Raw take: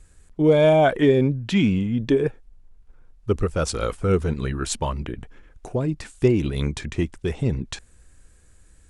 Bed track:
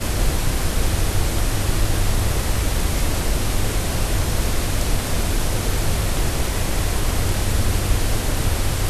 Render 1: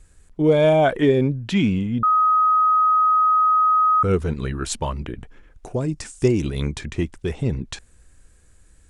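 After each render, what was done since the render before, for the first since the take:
0:02.03–0:04.03: beep over 1,260 Hz −13.5 dBFS
0:05.74–0:06.52: flat-topped bell 6,900 Hz +9 dB 1.1 octaves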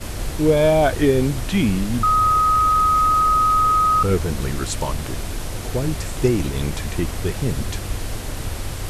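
mix in bed track −7 dB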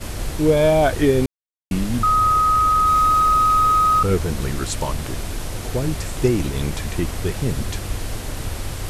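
0:01.26–0:01.71: silence
0:02.87–0:04.00: converter with a step at zero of −31 dBFS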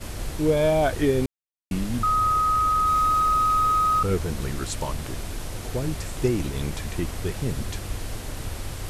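level −5 dB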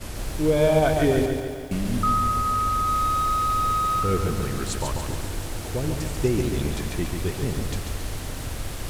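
echo machine with several playback heads 87 ms, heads all three, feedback 73%, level −21.5 dB
feedback echo at a low word length 141 ms, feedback 55%, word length 8 bits, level −5 dB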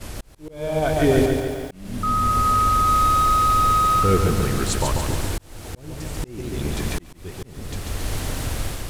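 automatic gain control gain up to 5.5 dB
volume swells 727 ms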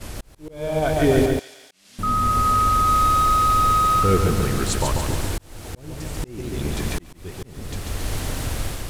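0:01.39–0:01.99: resonant band-pass 5,100 Hz, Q 0.92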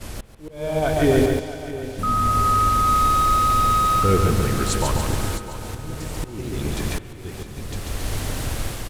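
repeating echo 659 ms, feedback 38%, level −14.5 dB
spring reverb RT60 3.7 s, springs 50 ms, chirp 60 ms, DRR 13.5 dB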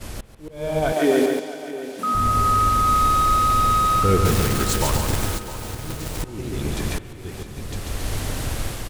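0:00.92–0:02.15: high-pass filter 220 Hz 24 dB per octave
0:04.25–0:06.23: one scale factor per block 3 bits

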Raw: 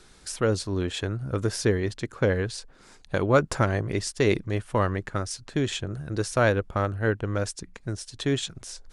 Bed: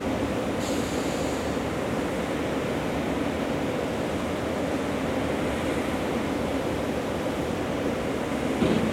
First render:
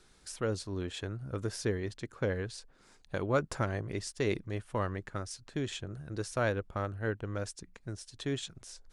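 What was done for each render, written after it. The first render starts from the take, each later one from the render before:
level −9 dB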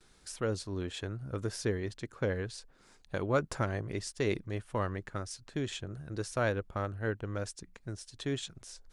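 noise gate with hold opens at −55 dBFS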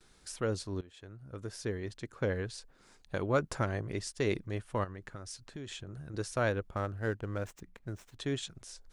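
0:00.81–0:02.29: fade in linear, from −20 dB
0:04.84–0:06.14: downward compressor, threshold −39 dBFS
0:06.76–0:08.19: running median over 9 samples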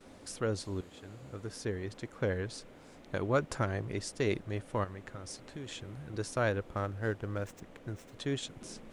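mix in bed −27.5 dB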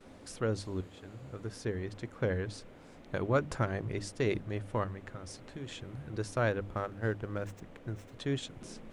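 bass and treble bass +3 dB, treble −4 dB
mains-hum notches 50/100/150/200/250/300 Hz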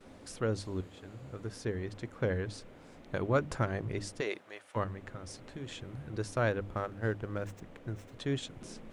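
0:04.20–0:04.75: high-pass filter 430 Hz → 1,100 Hz

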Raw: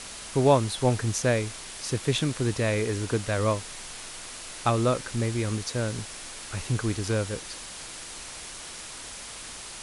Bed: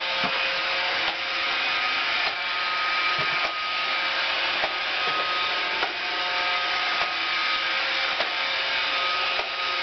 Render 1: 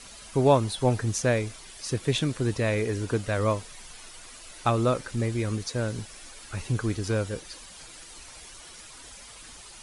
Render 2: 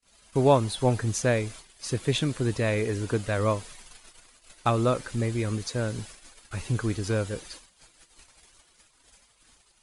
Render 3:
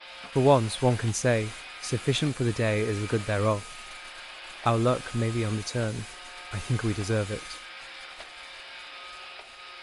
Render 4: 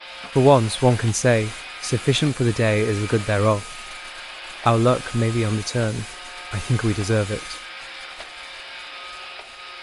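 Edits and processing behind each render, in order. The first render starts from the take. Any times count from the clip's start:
broadband denoise 10 dB, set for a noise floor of −41 dBFS
noise gate −43 dBFS, range −38 dB; notch filter 5,600 Hz, Q 22
mix in bed −18 dB
level +6.5 dB; brickwall limiter −3 dBFS, peak gain reduction 1.5 dB

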